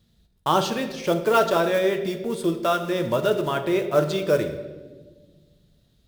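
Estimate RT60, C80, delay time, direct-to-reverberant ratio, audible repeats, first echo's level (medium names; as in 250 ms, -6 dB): 1.4 s, 11.5 dB, no echo, 6.0 dB, no echo, no echo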